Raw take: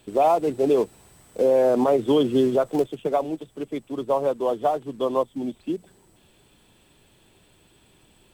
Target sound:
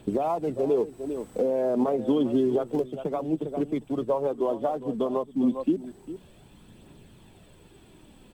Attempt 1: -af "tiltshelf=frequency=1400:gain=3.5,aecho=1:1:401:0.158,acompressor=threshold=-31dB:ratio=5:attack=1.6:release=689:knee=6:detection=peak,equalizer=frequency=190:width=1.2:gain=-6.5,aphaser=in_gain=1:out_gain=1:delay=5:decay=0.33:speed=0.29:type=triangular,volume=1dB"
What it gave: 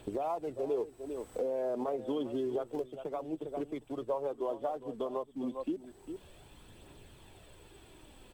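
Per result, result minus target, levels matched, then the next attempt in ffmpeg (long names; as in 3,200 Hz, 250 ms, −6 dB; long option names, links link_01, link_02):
downward compressor: peak gain reduction +7 dB; 250 Hz band −2.5 dB
-af "tiltshelf=frequency=1400:gain=3.5,aecho=1:1:401:0.158,acompressor=threshold=-22.5dB:ratio=5:attack=1.6:release=689:knee=6:detection=peak,equalizer=frequency=190:width=1.2:gain=-6.5,aphaser=in_gain=1:out_gain=1:delay=5:decay=0.33:speed=0.29:type=triangular,volume=1dB"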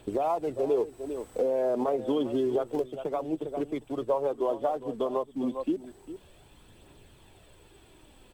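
250 Hz band −3.0 dB
-af "tiltshelf=frequency=1400:gain=3.5,aecho=1:1:401:0.158,acompressor=threshold=-22.5dB:ratio=5:attack=1.6:release=689:knee=6:detection=peak,equalizer=frequency=190:width=1.2:gain=4.5,aphaser=in_gain=1:out_gain=1:delay=5:decay=0.33:speed=0.29:type=triangular,volume=1dB"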